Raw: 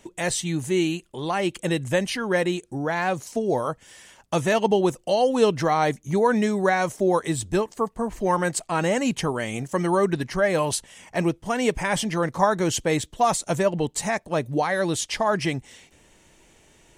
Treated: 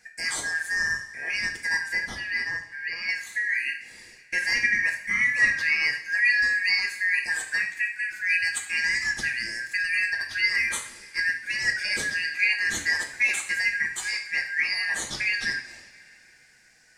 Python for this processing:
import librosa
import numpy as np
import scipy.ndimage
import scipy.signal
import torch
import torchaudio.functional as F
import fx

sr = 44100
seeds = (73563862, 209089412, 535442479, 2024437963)

y = fx.band_shuffle(x, sr, order='3142')
y = fx.high_shelf(y, sr, hz=3200.0, db=-11.0, at=(1.93, 3.09))
y = fx.rev_double_slope(y, sr, seeds[0], early_s=0.52, late_s=3.1, knee_db=-20, drr_db=2.0)
y = F.gain(torch.from_numpy(y), -5.5).numpy()